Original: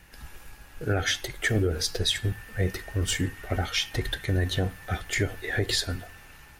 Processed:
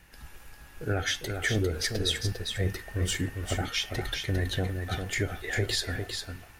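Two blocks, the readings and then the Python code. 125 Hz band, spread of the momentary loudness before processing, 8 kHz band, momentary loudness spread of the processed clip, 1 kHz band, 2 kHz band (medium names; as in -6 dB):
-2.0 dB, 9 LU, -2.0 dB, 6 LU, -2.0 dB, -2.0 dB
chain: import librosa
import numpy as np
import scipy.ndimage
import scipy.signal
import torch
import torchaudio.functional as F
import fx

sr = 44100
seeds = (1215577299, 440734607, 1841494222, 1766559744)

y = x + 10.0 ** (-6.0 / 20.0) * np.pad(x, (int(401 * sr / 1000.0), 0))[:len(x)]
y = F.gain(torch.from_numpy(y), -3.0).numpy()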